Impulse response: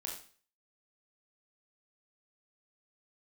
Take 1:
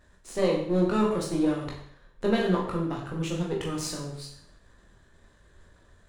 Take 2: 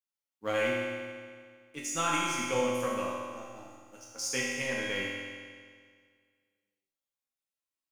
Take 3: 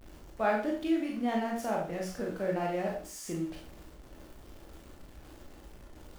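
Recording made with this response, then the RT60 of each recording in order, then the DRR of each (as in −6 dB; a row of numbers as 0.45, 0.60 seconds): 3; 0.65, 1.9, 0.40 seconds; −3.0, −6.0, −1.5 decibels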